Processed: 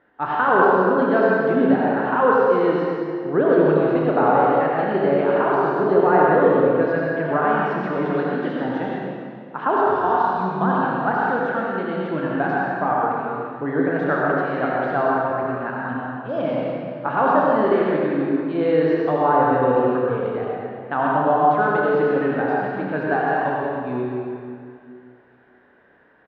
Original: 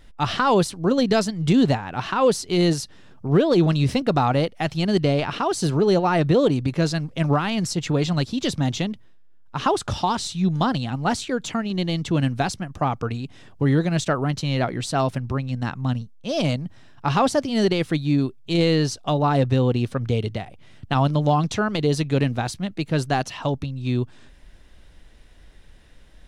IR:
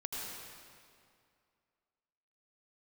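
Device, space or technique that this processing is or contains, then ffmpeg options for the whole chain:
station announcement: -filter_complex "[0:a]highpass=330,lowpass=4400,lowpass=1100,equalizer=frequency=1600:width_type=o:width=0.54:gain=10.5,aecho=1:1:32.07|64.14:0.355|0.282[link_01];[1:a]atrim=start_sample=2205[link_02];[link_01][link_02]afir=irnorm=-1:irlink=0,volume=3.5dB"

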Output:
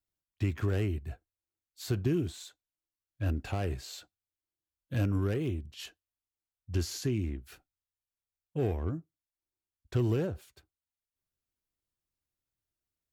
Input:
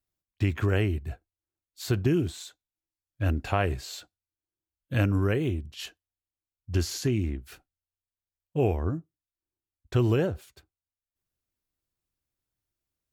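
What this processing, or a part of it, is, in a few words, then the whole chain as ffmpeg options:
one-band saturation: -filter_complex "[0:a]acrossover=split=460|4500[link_01][link_02][link_03];[link_02]asoftclip=type=tanh:threshold=-32.5dB[link_04];[link_01][link_04][link_03]amix=inputs=3:normalize=0,volume=-4.5dB"

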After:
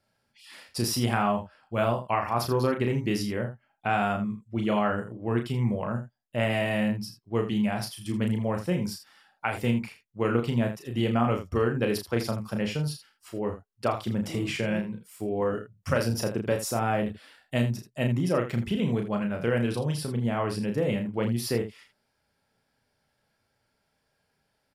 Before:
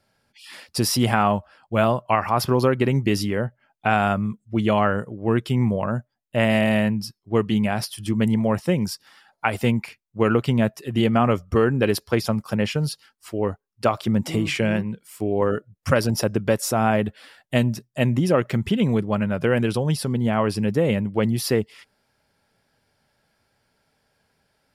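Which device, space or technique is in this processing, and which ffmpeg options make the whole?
slapback doubling: -filter_complex "[0:a]asplit=3[link_01][link_02][link_03];[link_02]adelay=34,volume=-5dB[link_04];[link_03]adelay=81,volume=-11dB[link_05];[link_01][link_04][link_05]amix=inputs=3:normalize=0,volume=-7.5dB"

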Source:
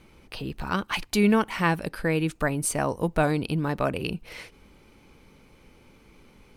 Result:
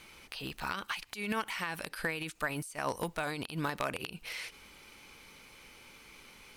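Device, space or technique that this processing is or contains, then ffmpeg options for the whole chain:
de-esser from a sidechain: -filter_complex "[0:a]asplit=2[link_01][link_02];[link_02]highpass=4800,apad=whole_len=289671[link_03];[link_01][link_03]sidechaincompress=threshold=-51dB:ratio=12:attack=1.3:release=67,tiltshelf=frequency=800:gain=-9"

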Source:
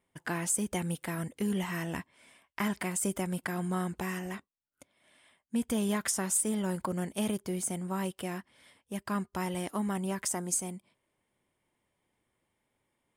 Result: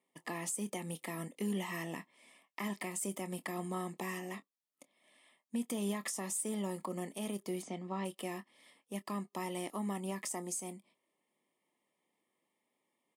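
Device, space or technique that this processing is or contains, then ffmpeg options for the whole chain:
PA system with an anti-feedback notch: -filter_complex "[0:a]asplit=3[link_01][link_02][link_03];[link_01]afade=type=out:start_time=7.61:duration=0.02[link_04];[link_02]lowpass=frequency=5100:width=0.5412,lowpass=frequency=5100:width=1.3066,afade=type=in:start_time=7.61:duration=0.02,afade=type=out:start_time=8.04:duration=0.02[link_05];[link_03]afade=type=in:start_time=8.04:duration=0.02[link_06];[link_04][link_05][link_06]amix=inputs=3:normalize=0,highpass=frequency=190:width=0.5412,highpass=frequency=190:width=1.3066,asuperstop=centerf=1500:order=12:qfactor=4.4,alimiter=level_in=0.5dB:limit=-24dB:level=0:latency=1:release=121,volume=-0.5dB,asplit=2[link_07][link_08];[link_08]adelay=25,volume=-14dB[link_09];[link_07][link_09]amix=inputs=2:normalize=0,volume=-3dB"

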